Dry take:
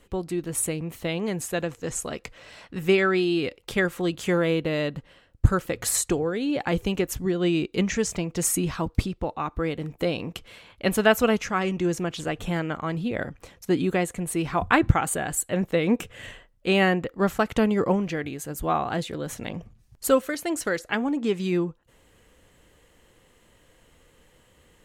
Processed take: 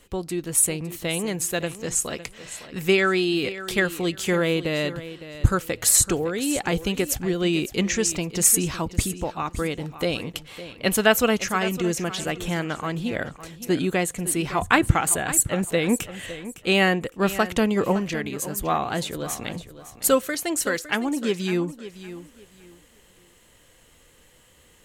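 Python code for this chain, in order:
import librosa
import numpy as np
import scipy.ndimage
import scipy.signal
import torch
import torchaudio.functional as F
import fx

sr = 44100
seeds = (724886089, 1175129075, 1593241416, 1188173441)

y = fx.high_shelf(x, sr, hz=2800.0, db=8.5)
y = fx.echo_feedback(y, sr, ms=559, feedback_pct=24, wet_db=-14)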